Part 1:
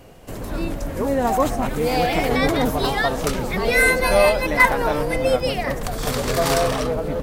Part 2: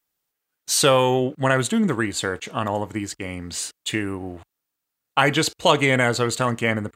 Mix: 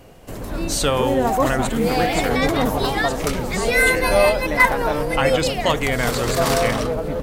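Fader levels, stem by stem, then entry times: 0.0, -3.5 dB; 0.00, 0.00 s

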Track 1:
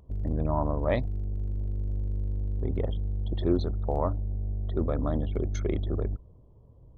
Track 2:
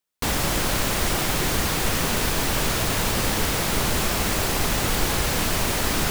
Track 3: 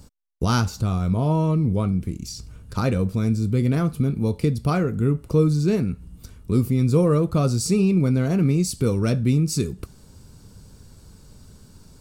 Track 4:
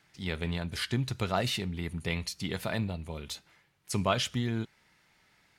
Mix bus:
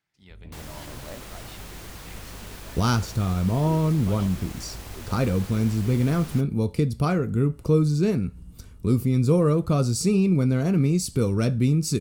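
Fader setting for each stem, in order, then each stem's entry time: -15.0, -18.5, -1.5, -17.0 dB; 0.20, 0.30, 2.35, 0.00 s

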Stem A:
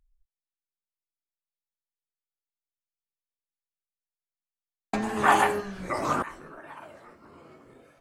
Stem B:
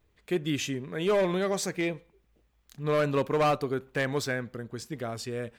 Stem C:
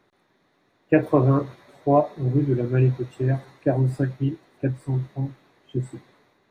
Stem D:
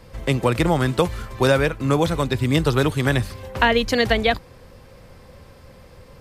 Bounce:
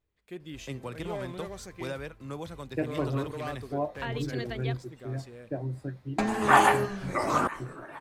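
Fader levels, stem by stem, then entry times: +1.0, -13.0, -13.0, -19.5 dB; 1.25, 0.00, 1.85, 0.40 s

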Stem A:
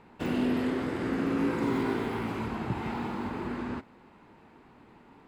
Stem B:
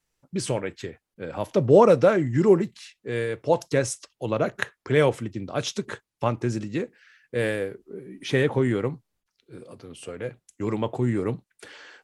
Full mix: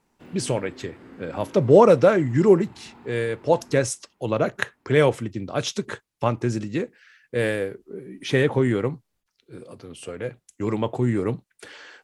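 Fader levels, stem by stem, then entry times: -15.0, +2.0 dB; 0.00, 0.00 s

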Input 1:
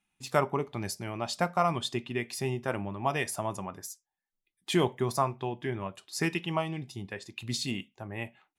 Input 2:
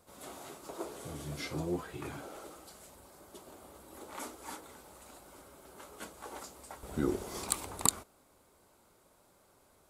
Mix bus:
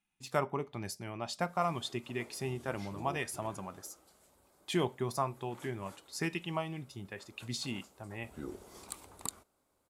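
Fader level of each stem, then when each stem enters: -5.5, -11.5 dB; 0.00, 1.40 s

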